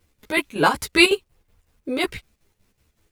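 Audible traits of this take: a quantiser's noise floor 12-bit, dither none; chopped level 5.4 Hz, depth 60%, duty 65%; a shimmering, thickened sound

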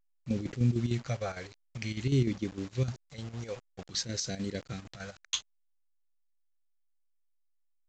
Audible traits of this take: phasing stages 2, 0.51 Hz, lowest notch 220–1000 Hz; a quantiser's noise floor 8-bit, dither none; chopped level 6.6 Hz, depth 60%, duty 70%; A-law

